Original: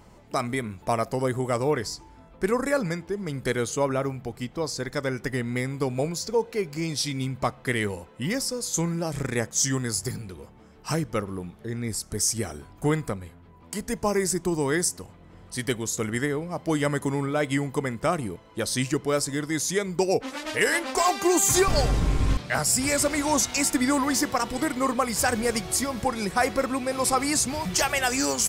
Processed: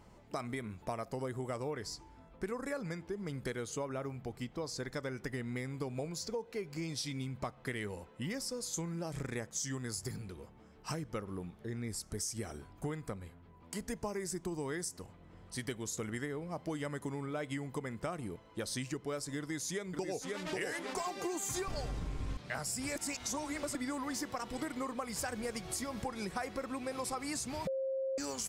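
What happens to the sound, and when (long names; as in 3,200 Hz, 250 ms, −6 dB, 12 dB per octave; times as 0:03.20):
0:19.39–0:20.39: delay throw 540 ms, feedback 45%, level −4 dB
0:22.96–0:23.75: reverse
0:27.67–0:28.18: beep over 533 Hz −17.5 dBFS
whole clip: high-shelf EQ 8,100 Hz −4 dB; downward compressor, threshold −28 dBFS; level −7 dB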